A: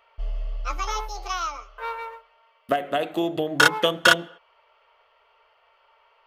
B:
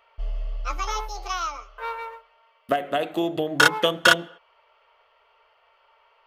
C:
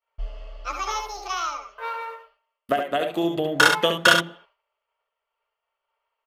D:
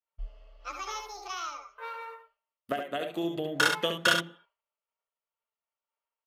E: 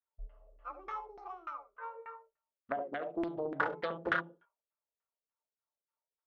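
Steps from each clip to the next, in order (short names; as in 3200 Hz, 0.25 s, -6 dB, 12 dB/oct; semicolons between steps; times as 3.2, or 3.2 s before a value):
nothing audible
expander -47 dBFS; on a send: tapped delay 66/71 ms -10.5/-6.5 dB
spectral noise reduction 8 dB; dynamic EQ 860 Hz, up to -4 dB, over -33 dBFS, Q 1.2; gain -7 dB
LFO low-pass saw down 3.4 Hz 320–1900 Hz; Doppler distortion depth 0.35 ms; gain -7.5 dB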